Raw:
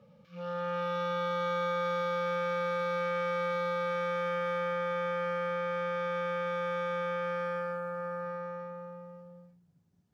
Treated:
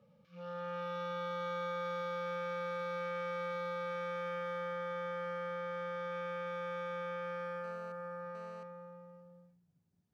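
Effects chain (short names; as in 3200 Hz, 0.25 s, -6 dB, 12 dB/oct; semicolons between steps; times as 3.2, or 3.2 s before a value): 4.43–6.12 notch 2500 Hz, Q 10; 7.64–8.63 GSM buzz -52 dBFS; gain -7 dB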